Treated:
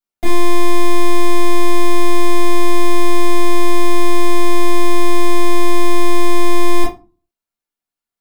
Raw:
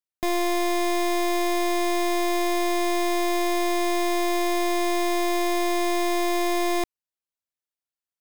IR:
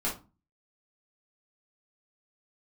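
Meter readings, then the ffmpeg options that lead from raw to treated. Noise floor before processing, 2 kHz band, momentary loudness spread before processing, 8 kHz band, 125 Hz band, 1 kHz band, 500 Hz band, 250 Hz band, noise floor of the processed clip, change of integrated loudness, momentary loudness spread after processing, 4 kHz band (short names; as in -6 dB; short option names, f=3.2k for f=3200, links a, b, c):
under -85 dBFS, +4.5 dB, 0 LU, +5.0 dB, n/a, +6.0 dB, +5.5 dB, +7.5 dB, under -85 dBFS, +6.0 dB, 0 LU, +4.5 dB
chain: -filter_complex "[1:a]atrim=start_sample=2205[a];[0:a][a]afir=irnorm=-1:irlink=0"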